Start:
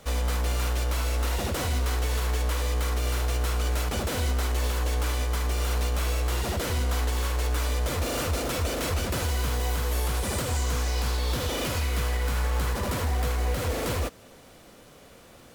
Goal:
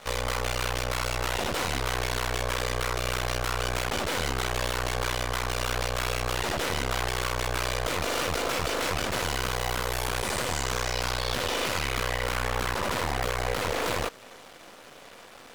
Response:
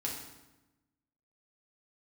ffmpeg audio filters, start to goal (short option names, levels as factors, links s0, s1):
-filter_complex "[0:a]aeval=exprs='max(val(0),0)':c=same,asplit=2[s0][s1];[s1]highpass=f=720:p=1,volume=5.62,asoftclip=type=tanh:threshold=0.141[s2];[s0][s2]amix=inputs=2:normalize=0,lowpass=f=3900:p=1,volume=0.501,volume=1.19"